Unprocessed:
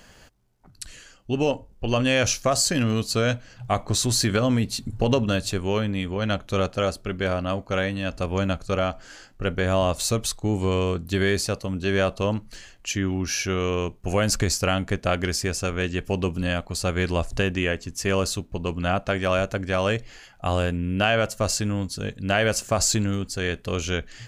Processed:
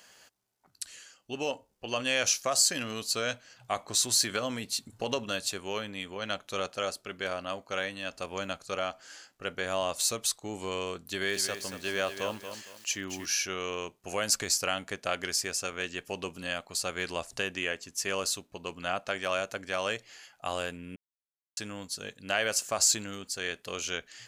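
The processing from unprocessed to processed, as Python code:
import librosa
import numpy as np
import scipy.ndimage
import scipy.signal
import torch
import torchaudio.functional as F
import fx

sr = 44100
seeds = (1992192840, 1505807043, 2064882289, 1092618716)

y = fx.echo_crushed(x, sr, ms=231, feedback_pct=35, bits=7, wet_db=-8.5, at=(10.99, 13.26))
y = fx.edit(y, sr, fx.silence(start_s=20.96, length_s=0.61), tone=tone)
y = fx.highpass(y, sr, hz=1300.0, slope=6)
y = fx.peak_eq(y, sr, hz=2000.0, db=-3.5, octaves=2.5)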